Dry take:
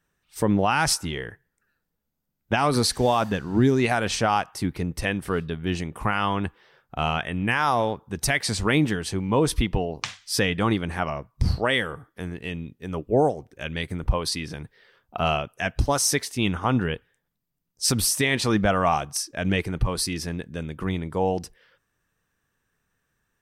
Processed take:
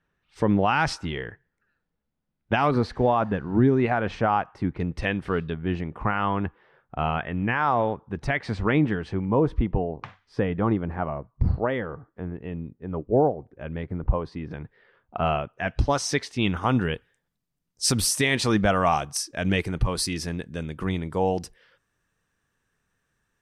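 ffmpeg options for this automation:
ffmpeg -i in.wav -af "asetnsamples=nb_out_samples=441:pad=0,asendcmd='2.71 lowpass f 1700;4.8 lowpass f 3500;5.54 lowpass f 1900;9.25 lowpass f 1100;14.51 lowpass f 2000;15.68 lowpass f 4500;16.57 lowpass f 11000',lowpass=3300" out.wav

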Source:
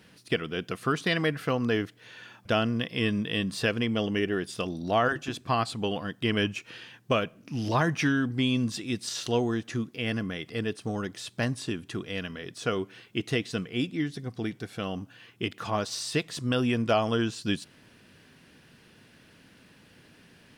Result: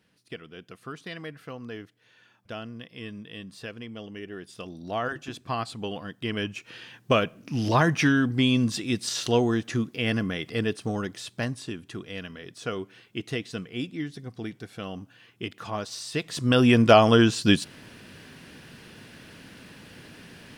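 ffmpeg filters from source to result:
ffmpeg -i in.wav -af "volume=16dB,afade=type=in:start_time=4.2:duration=1.11:silence=0.375837,afade=type=in:start_time=6.48:duration=0.67:silence=0.421697,afade=type=out:start_time=10.64:duration=1:silence=0.446684,afade=type=in:start_time=16.13:duration=0.63:silence=0.251189" out.wav

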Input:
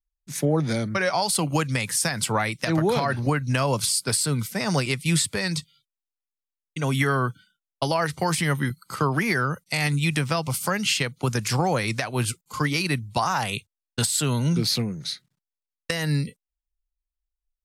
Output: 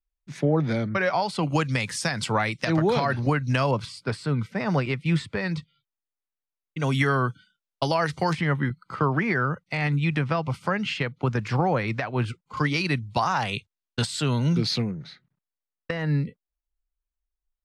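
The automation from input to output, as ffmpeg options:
ffmpeg -i in.wav -af "asetnsamples=nb_out_samples=441:pad=0,asendcmd='1.43 lowpass f 5300;3.71 lowpass f 2200;6.8 lowpass f 6100;8.33 lowpass f 2300;12.57 lowpass f 4500;14.91 lowpass f 1800',lowpass=3000" out.wav

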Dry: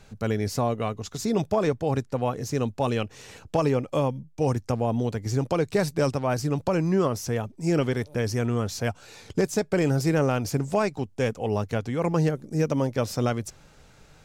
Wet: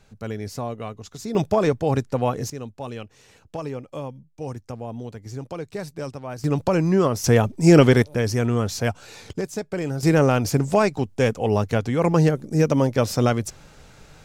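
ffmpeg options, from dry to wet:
ffmpeg -i in.wav -af "asetnsamples=nb_out_samples=441:pad=0,asendcmd='1.35 volume volume 4dB;2.5 volume volume -8dB;6.44 volume volume 4dB;7.24 volume volume 11dB;8.02 volume volume 4dB;9.33 volume volume -4dB;10.03 volume volume 5.5dB',volume=-4.5dB" out.wav

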